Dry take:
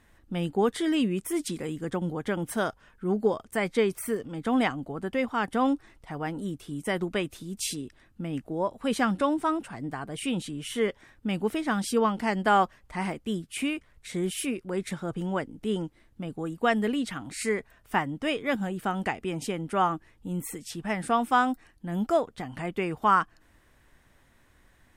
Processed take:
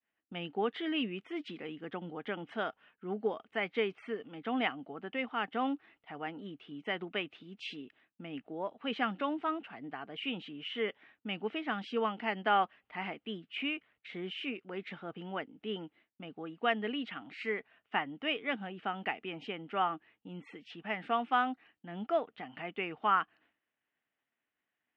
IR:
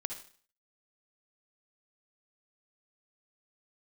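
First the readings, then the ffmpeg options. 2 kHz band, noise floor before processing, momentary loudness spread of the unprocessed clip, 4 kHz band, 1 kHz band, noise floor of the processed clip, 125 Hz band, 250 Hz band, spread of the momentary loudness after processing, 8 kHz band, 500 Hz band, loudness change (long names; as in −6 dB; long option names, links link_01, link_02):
−4.5 dB, −62 dBFS, 10 LU, −2.5 dB, −6.5 dB, below −85 dBFS, −14.5 dB, −10.5 dB, 14 LU, below −35 dB, −8.0 dB, −7.5 dB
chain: -af "highpass=330,equalizer=frequency=360:width_type=q:width=4:gain=-5,equalizer=frequency=540:width_type=q:width=4:gain=-7,equalizer=frequency=1000:width_type=q:width=4:gain=-7,equalizer=frequency=1600:width_type=q:width=4:gain=-3,equalizer=frequency=2900:width_type=q:width=4:gain=6,lowpass=frequency=3000:width=0.5412,lowpass=frequency=3000:width=1.3066,agate=range=-33dB:threshold=-56dB:ratio=3:detection=peak,volume=-3dB"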